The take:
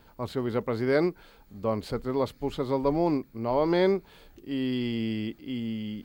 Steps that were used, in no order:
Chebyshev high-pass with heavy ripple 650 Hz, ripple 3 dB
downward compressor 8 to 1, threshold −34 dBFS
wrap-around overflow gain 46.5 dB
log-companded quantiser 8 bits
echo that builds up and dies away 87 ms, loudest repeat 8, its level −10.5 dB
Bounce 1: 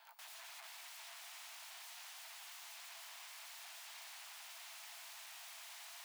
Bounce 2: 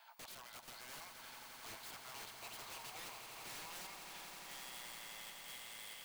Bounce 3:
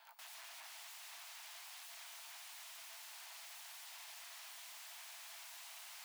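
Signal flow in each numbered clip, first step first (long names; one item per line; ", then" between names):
log-companded quantiser, then echo that builds up and dies away, then downward compressor, then wrap-around overflow, then Chebyshev high-pass with heavy ripple
downward compressor, then log-companded quantiser, then Chebyshev high-pass with heavy ripple, then wrap-around overflow, then echo that builds up and dies away
downward compressor, then log-companded quantiser, then echo that builds up and dies away, then wrap-around overflow, then Chebyshev high-pass with heavy ripple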